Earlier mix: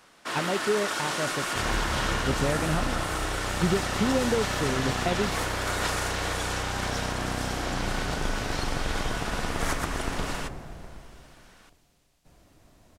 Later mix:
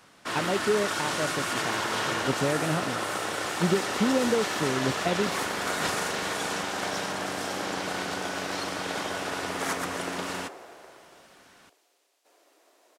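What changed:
speech: add high-pass 200 Hz; second sound: add steep high-pass 360 Hz 36 dB/octave; master: add bass shelf 140 Hz +11 dB

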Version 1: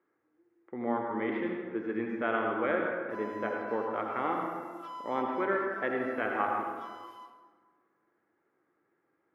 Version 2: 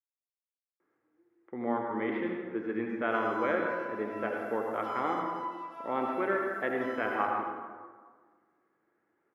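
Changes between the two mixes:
speech: entry +0.80 s; background: send +8.0 dB

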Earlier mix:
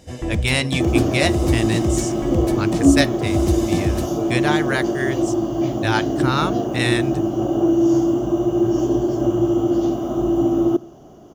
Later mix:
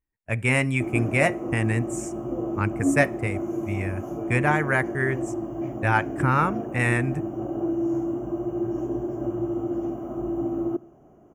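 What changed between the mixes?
first sound: muted; second sound -9.5 dB; master: add FFT filter 2.4 kHz 0 dB, 3.9 kHz -26 dB, 7.6 kHz -6 dB

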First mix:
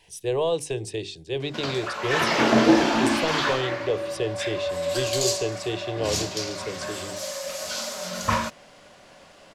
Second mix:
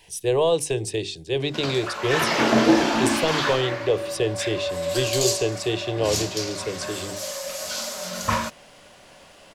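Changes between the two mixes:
speech +4.0 dB; master: add treble shelf 9.8 kHz +7 dB

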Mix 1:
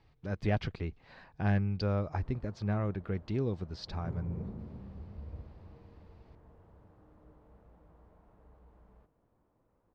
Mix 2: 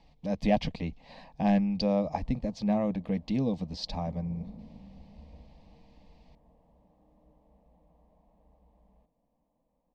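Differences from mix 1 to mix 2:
speech +9.0 dB; master: add static phaser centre 380 Hz, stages 6

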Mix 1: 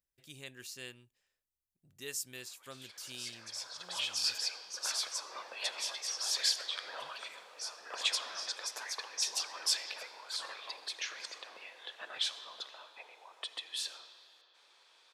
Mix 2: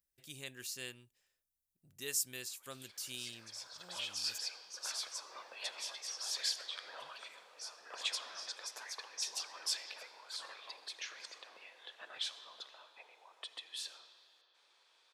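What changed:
speech: add treble shelf 6.1 kHz +6.5 dB; background -5.5 dB

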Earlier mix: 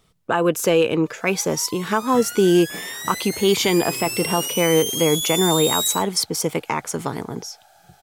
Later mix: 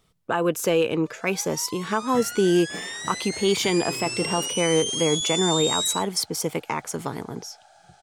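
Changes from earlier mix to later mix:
speech -4.0 dB; first sound: add steep low-pass 9.6 kHz 72 dB/octave; reverb: off

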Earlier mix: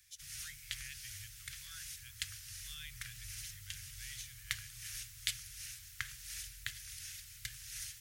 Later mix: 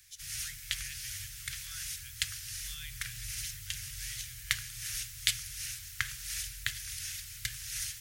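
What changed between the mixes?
first sound +7.0 dB; reverb: on, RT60 2.0 s

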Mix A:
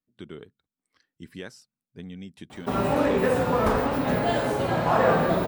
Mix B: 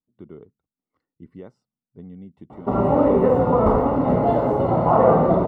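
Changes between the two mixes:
background +6.0 dB; master: add Savitzky-Golay filter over 65 samples

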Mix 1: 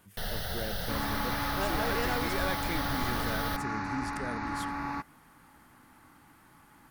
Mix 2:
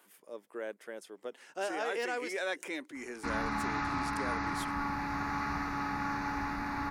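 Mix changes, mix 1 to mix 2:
speech: add high-pass 320 Hz 24 dB/octave; first sound: muted; second sound: entry +2.35 s

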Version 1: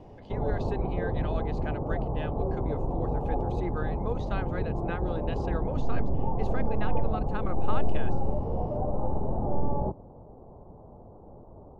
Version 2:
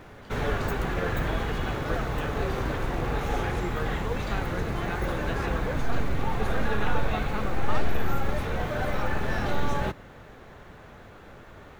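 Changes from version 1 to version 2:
background: remove steep low-pass 940 Hz 48 dB/octave; master: remove distance through air 120 m

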